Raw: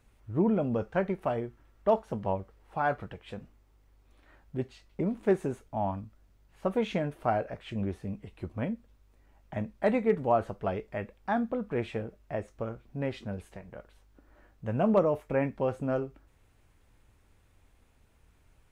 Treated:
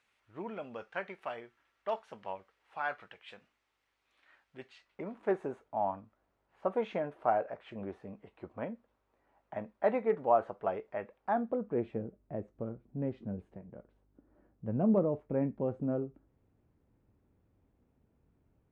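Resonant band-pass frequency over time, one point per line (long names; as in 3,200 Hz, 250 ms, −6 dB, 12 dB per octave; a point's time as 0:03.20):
resonant band-pass, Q 0.82
0:04.56 2,500 Hz
0:05.42 820 Hz
0:11.16 820 Hz
0:12.03 230 Hz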